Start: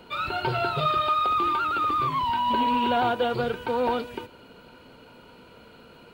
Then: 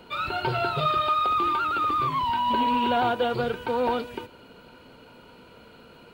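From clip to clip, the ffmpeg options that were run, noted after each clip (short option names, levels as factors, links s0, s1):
-af anull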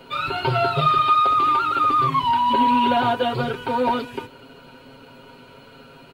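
-af "aecho=1:1:7.4:0.93,volume=1.26"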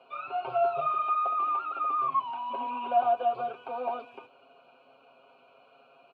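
-filter_complex "[0:a]asplit=3[s0][s1][s2];[s0]bandpass=f=730:t=q:w=8,volume=1[s3];[s1]bandpass=f=1090:t=q:w=8,volume=0.501[s4];[s2]bandpass=f=2440:t=q:w=8,volume=0.355[s5];[s3][s4][s5]amix=inputs=3:normalize=0,acrossover=split=2500[s6][s7];[s7]acompressor=threshold=0.00112:ratio=4:attack=1:release=60[s8];[s6][s8]amix=inputs=2:normalize=0"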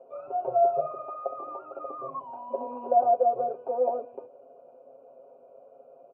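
-af "lowpass=f=550:t=q:w=4.9"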